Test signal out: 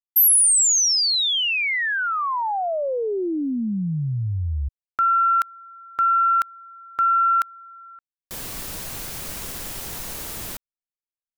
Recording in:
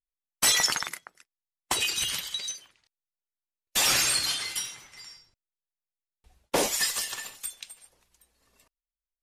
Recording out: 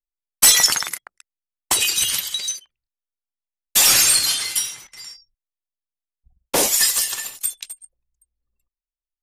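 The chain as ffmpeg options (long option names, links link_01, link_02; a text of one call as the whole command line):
ffmpeg -i in.wav -af "anlmdn=0.00251,crystalizer=i=1.5:c=0,aeval=exprs='0.562*(cos(1*acos(clip(val(0)/0.562,-1,1)))-cos(1*PI/2))+0.00891*(cos(4*acos(clip(val(0)/0.562,-1,1)))-cos(4*PI/2))':channel_layout=same,volume=4dB" out.wav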